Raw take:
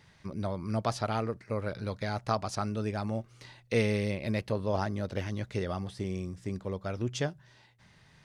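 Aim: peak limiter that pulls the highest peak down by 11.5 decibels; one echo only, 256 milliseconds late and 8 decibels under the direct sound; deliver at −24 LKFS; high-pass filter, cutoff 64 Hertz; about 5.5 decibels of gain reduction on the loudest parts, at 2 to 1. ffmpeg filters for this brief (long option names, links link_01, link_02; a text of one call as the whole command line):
ffmpeg -i in.wav -af "highpass=64,acompressor=threshold=-33dB:ratio=2,alimiter=level_in=5.5dB:limit=-24dB:level=0:latency=1,volume=-5.5dB,aecho=1:1:256:0.398,volume=17dB" out.wav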